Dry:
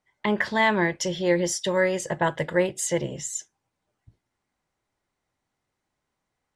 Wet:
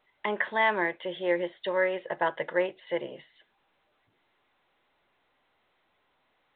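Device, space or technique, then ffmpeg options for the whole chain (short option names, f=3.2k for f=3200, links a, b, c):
telephone: -af "highpass=400,lowpass=3.2k,volume=-2.5dB" -ar 8000 -c:a pcm_alaw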